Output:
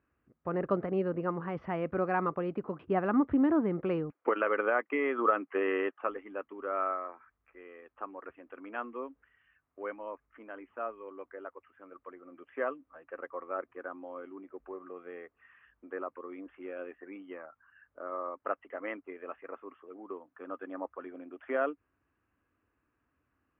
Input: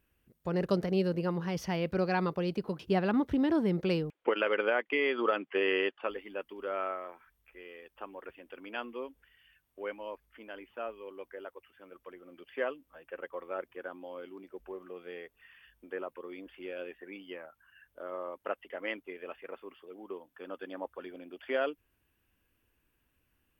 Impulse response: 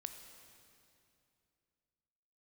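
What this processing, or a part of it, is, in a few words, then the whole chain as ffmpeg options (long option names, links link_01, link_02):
bass cabinet: -af "highpass=67,equalizer=frequency=180:width_type=q:width=4:gain=-4,equalizer=frequency=280:width_type=q:width=4:gain=5,equalizer=frequency=690:width_type=q:width=4:gain=3,equalizer=frequency=1200:width_type=q:width=4:gain=9,lowpass=frequency=2100:width=0.5412,lowpass=frequency=2100:width=1.3066,volume=-1.5dB"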